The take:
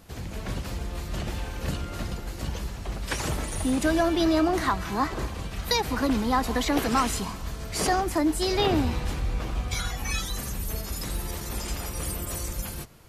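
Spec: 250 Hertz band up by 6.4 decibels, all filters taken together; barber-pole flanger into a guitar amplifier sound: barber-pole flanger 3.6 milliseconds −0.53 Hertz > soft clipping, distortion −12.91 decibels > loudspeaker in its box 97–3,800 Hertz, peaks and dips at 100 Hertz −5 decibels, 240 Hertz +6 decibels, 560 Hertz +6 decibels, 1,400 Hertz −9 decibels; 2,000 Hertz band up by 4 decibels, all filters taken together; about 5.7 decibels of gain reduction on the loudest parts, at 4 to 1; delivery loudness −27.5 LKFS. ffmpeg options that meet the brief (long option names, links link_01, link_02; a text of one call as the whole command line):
ffmpeg -i in.wav -filter_complex "[0:a]equalizer=frequency=250:width_type=o:gain=4.5,equalizer=frequency=2000:width_type=o:gain=7.5,acompressor=threshold=-23dB:ratio=4,asplit=2[link_01][link_02];[link_02]adelay=3.6,afreqshift=-0.53[link_03];[link_01][link_03]amix=inputs=2:normalize=1,asoftclip=threshold=-27.5dB,highpass=97,equalizer=frequency=100:width_type=q:width=4:gain=-5,equalizer=frequency=240:width_type=q:width=4:gain=6,equalizer=frequency=560:width_type=q:width=4:gain=6,equalizer=frequency=1400:width_type=q:width=4:gain=-9,lowpass=frequency=3800:width=0.5412,lowpass=frequency=3800:width=1.3066,volume=7.5dB" out.wav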